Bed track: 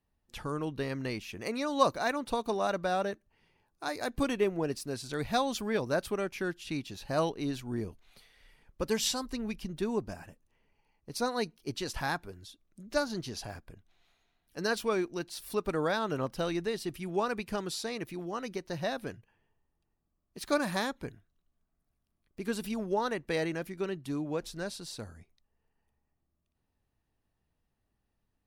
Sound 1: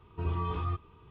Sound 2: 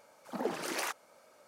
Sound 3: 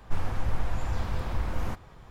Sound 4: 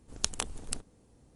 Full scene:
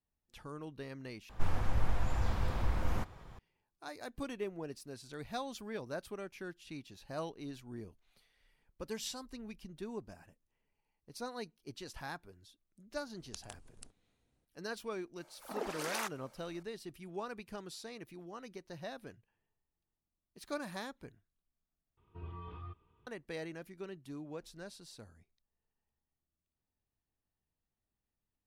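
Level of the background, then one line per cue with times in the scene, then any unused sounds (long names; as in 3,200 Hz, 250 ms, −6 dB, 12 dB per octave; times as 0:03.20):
bed track −11 dB
0:01.29: overwrite with 3 −3 dB
0:13.10: mix in 4 −18 dB
0:15.16: mix in 2 −2.5 dB + high-pass filter 480 Hz 6 dB per octave
0:21.97: overwrite with 1 −14.5 dB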